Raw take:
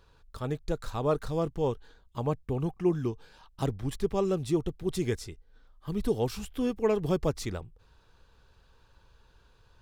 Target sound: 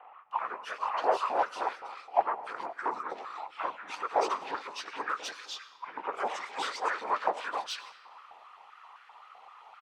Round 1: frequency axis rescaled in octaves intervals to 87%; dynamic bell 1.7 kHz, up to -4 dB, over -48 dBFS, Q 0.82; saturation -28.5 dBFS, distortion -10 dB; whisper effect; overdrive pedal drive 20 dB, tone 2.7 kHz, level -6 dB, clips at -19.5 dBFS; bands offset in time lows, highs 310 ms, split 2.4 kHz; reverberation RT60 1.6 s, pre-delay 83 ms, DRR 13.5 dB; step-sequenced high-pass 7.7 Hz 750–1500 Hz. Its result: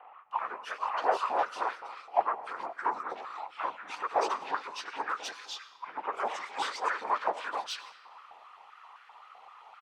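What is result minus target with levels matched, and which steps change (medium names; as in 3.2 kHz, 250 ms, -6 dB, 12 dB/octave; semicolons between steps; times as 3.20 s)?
saturation: distortion +10 dB
change: saturation -19.5 dBFS, distortion -20 dB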